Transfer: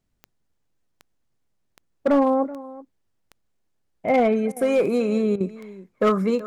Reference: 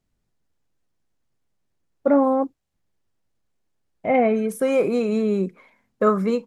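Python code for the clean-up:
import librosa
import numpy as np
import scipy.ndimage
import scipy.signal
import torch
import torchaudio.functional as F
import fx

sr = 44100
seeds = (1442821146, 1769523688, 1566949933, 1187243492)

y = fx.fix_declip(x, sr, threshold_db=-13.0)
y = fx.fix_declick_ar(y, sr, threshold=10.0)
y = fx.fix_interpolate(y, sr, at_s=(4.52, 5.36), length_ms=43.0)
y = fx.fix_echo_inverse(y, sr, delay_ms=379, level_db=-18.5)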